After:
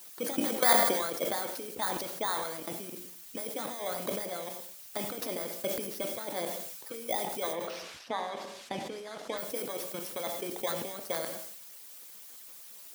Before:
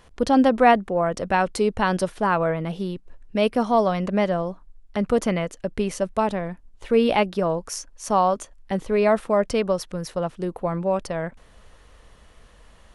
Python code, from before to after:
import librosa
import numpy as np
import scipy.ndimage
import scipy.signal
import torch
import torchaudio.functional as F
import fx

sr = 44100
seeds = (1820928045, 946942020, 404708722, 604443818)

y = fx.bit_reversed(x, sr, seeds[0], block=16)
y = fx.echo_filtered(y, sr, ms=89, feedback_pct=17, hz=1200.0, wet_db=-10.5)
y = fx.level_steps(y, sr, step_db=14)
y = fx.dmg_noise_colour(y, sr, seeds[1], colour='blue', level_db=-45.0)
y = fx.lowpass(y, sr, hz=fx.line((7.52, 2800.0), (9.37, 6100.0)), slope=12, at=(7.52, 9.37), fade=0.02)
y = fx.hpss(y, sr, part='harmonic', gain_db=-16)
y = scipy.signal.sosfilt(scipy.signal.butter(2, 250.0, 'highpass', fs=sr, output='sos'), y)
y = fx.rev_gated(y, sr, seeds[2], gate_ms=300, shape='falling', drr_db=9.0)
y = fx.sustainer(y, sr, db_per_s=38.0)